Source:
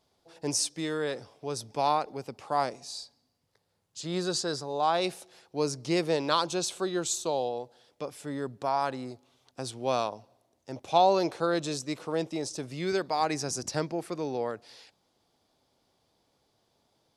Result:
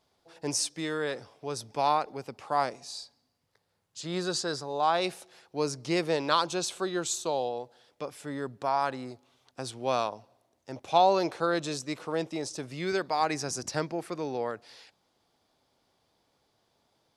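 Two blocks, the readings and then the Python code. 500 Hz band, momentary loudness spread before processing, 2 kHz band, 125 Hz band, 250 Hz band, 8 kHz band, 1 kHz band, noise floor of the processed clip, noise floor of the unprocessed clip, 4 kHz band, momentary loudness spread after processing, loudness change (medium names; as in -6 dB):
-0.5 dB, 14 LU, +2.0 dB, -1.5 dB, -1.0 dB, -1.0 dB, +0.5 dB, -74 dBFS, -74 dBFS, -0.5 dB, 15 LU, 0.0 dB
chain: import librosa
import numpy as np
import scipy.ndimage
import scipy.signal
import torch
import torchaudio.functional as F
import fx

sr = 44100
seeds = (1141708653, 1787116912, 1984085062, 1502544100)

y = fx.peak_eq(x, sr, hz=1600.0, db=4.0, octaves=1.9)
y = y * 10.0 ** (-1.5 / 20.0)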